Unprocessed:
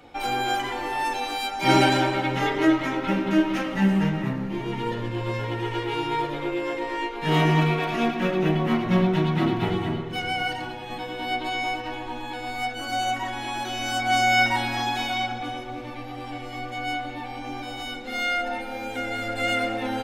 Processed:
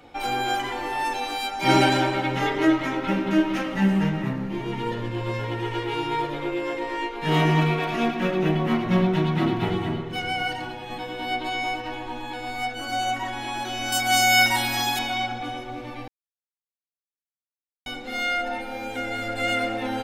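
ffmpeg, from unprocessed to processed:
-filter_complex "[0:a]asettb=1/sr,asplit=3[a][b][c];[a]atrim=end=13.924[d];[b]atrim=start=13.92:end=14.99,asetpts=PTS-STARTPTS,afade=t=in:d=0.004:c=qsin,afade=t=out:st=1.066:d=0.004:c=qsin,aemphasis=mode=production:type=75fm[e];[c]atrim=start=14.986[f];[d][e]acrossfade=d=0.004:c1=hsin:c2=qsin[g];[g][f]acrossfade=d=0.004:c1=qsin:c2=hsin,asplit=3[h][i][j];[h]atrim=end=16.08,asetpts=PTS-STARTPTS,afade=t=out:st=16.076:d=0.004:c=hsin[k];[i]atrim=start=16.08:end=17.86,asetpts=PTS-STARTPTS,volume=0[l];[j]atrim=start=17.86,asetpts=PTS-STARTPTS,afade=t=in:d=0.004:c=hsin[m];[k][l][m]concat=n=3:v=0:a=1"

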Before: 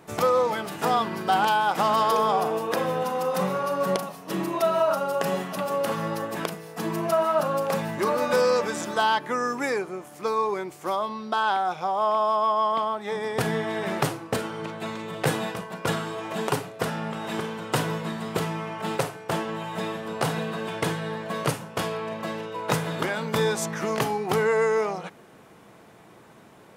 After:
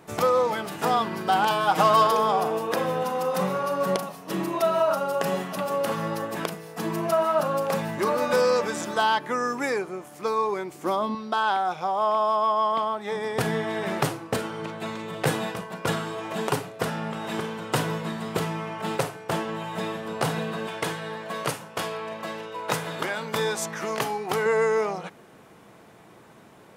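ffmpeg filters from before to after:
-filter_complex "[0:a]asettb=1/sr,asplit=3[a][b][c];[a]atrim=end=1.504[d];[b]atrim=start=1.5:end=2.07,asetpts=PTS-STARTPTS,afade=t=in:d=0.004:c=qsin,afade=t=out:st=0.566:d=0.004:c=qsin,aecho=1:1:6.4:0.98,atrim=end_sample=25137[e];[c]atrim=start=2.066[f];[d][e]acrossfade=d=0.004:c1=hsin:c2=qsin[g];[g][f]acrossfade=d=0.004:c1=qsin:c2=hsin,asettb=1/sr,asplit=3[h][i][j];[h]atrim=end=10.744[k];[i]atrim=start=10.74:end=11.15,asetpts=PTS-STARTPTS,afade=t=in:d=0.004:c=qsin,afade=t=out:st=0.406:d=0.004:c=qsin,equalizer=f=260:t=o:w=0.8:g=13[l];[j]atrim=start=11.146[m];[k][l]acrossfade=d=0.004:c1=hsin:c2=qsin[n];[n][m]acrossfade=d=0.004:c1=qsin:c2=hsin,asettb=1/sr,asplit=3[o][p][q];[o]atrim=end=20.674[r];[p]atrim=start=20.67:end=24.46,asetpts=PTS-STARTPTS,afade=t=in:d=0.004:c=qsin,afade=t=out:st=3.786:d=0.004:c=qsin,lowshelf=f=310:g=-8.5[s];[q]atrim=start=24.456[t];[r][s]acrossfade=d=0.004:c1=hsin:c2=qsin[u];[u][t]acrossfade=d=0.004:c1=qsin:c2=hsin"

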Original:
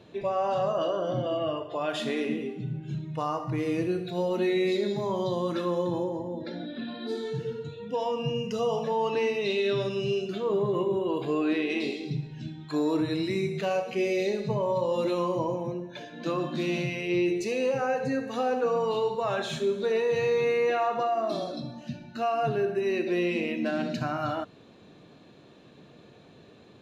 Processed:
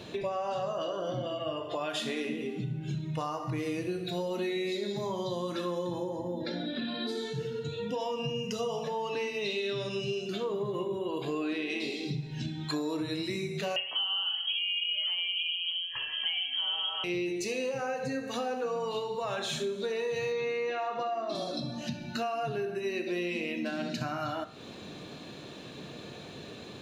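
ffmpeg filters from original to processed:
-filter_complex "[0:a]asettb=1/sr,asplit=3[a][b][c];[a]atrim=end=13.764[d];[b]atrim=start=13.76:end=17.04,asetpts=PTS-STARTPTS,afade=t=in:d=0.004:c=qsin,afade=t=out:st=3.276:d=0.004:c=qsin,lowpass=f=2.9k:t=q:w=0.5098,lowpass=f=2.9k:t=q:w=0.6013,lowpass=f=2.9k:t=q:w=0.9,lowpass=f=2.9k:t=q:w=2.563,afreqshift=-3400[e];[c]atrim=start=17.036[f];[d][e]acrossfade=d=0.004:c1=hsin:c2=qsin[g];[g][f]acrossfade=d=0.004:c1=qsin:c2=hsin,asettb=1/sr,asplit=3[h][i][j];[h]atrim=end=20.324[k];[i]atrim=start=20.32:end=21.35,asetpts=PTS-STARTPTS,afade=t=in:d=0.004:c=qsin,afade=t=out:st=1.026:d=0.004:c=qsin,highpass=120,lowpass=5.5k[l];[j]atrim=start=21.346[m];[k][l]acrossfade=d=0.004:c1=hsin:c2=qsin[n];[n][m]acrossfade=d=0.004:c1=qsin:c2=hsin,highshelf=f=2.6k:g=8,acompressor=threshold=-40dB:ratio=5,bandreject=f=55.23:t=h:w=4,bandreject=f=110.46:t=h:w=4,bandreject=f=165.69:t=h:w=4,bandreject=f=220.92:t=h:w=4,bandreject=f=276.15:t=h:w=4,bandreject=f=331.38:t=h:w=4,bandreject=f=386.61:t=h:w=4,bandreject=f=441.84:t=h:w=4,bandreject=f=497.07:t=h:w=4,bandreject=f=552.3:t=h:w=4,bandreject=f=607.53:t=h:w=4,bandreject=f=662.76:t=h:w=4,bandreject=f=717.99:t=h:w=4,bandreject=f=773.22:t=h:w=4,bandreject=f=828.45:t=h:w=4,bandreject=f=883.68:t=h:w=4,bandreject=f=938.91:t=h:w=4,bandreject=f=994.14:t=h:w=4,bandreject=f=1.04937k:t=h:w=4,bandreject=f=1.1046k:t=h:w=4,bandreject=f=1.15983k:t=h:w=4,bandreject=f=1.21506k:t=h:w=4,bandreject=f=1.27029k:t=h:w=4,bandreject=f=1.32552k:t=h:w=4,bandreject=f=1.38075k:t=h:w=4,bandreject=f=1.43598k:t=h:w=4,bandreject=f=1.49121k:t=h:w=4,bandreject=f=1.54644k:t=h:w=4,bandreject=f=1.60167k:t=h:w=4,bandreject=f=1.6569k:t=h:w=4,bandreject=f=1.71213k:t=h:w=4,bandreject=f=1.76736k:t=h:w=4,bandreject=f=1.82259k:t=h:w=4,bandreject=f=1.87782k:t=h:w=4,bandreject=f=1.93305k:t=h:w=4,bandreject=f=1.98828k:t=h:w=4,bandreject=f=2.04351k:t=h:w=4,bandreject=f=2.09874k:t=h:w=4,bandreject=f=2.15397k:t=h:w=4,volume=8dB"

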